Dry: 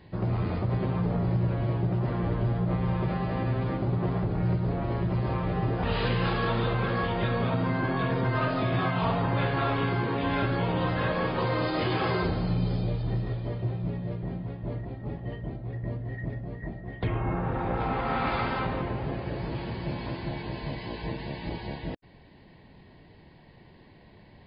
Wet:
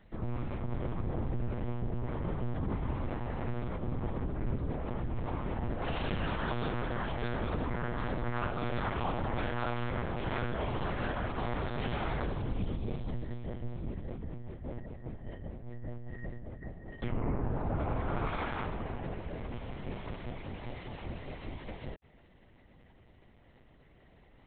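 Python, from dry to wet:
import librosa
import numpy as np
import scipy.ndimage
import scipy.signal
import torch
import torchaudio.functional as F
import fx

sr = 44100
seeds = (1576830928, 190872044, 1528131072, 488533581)

y = fx.lpc_monotone(x, sr, seeds[0], pitch_hz=120.0, order=8)
y = fx.tilt_shelf(y, sr, db=5.0, hz=650.0, at=(17.12, 18.27))
y = y * 10.0 ** (-6.5 / 20.0)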